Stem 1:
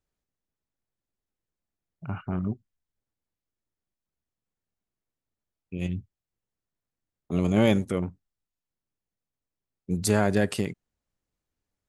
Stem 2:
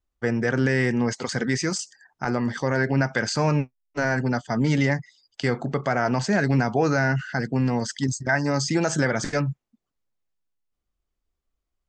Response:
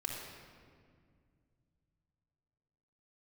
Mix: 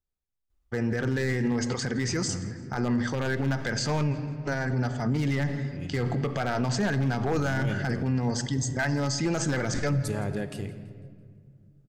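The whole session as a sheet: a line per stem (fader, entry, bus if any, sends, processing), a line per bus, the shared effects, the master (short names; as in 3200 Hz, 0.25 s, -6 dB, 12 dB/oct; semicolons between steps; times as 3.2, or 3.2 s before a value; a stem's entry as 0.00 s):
-12.5 dB, 0.00 s, send -8 dB, echo send -16 dB, dry
-1.5 dB, 0.50 s, send -11 dB, echo send -23 dB, wavefolder -14 dBFS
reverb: on, RT60 2.1 s, pre-delay 3 ms
echo: feedback echo 0.166 s, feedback 38%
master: low shelf 120 Hz +9 dB; limiter -19 dBFS, peak gain reduction 9.5 dB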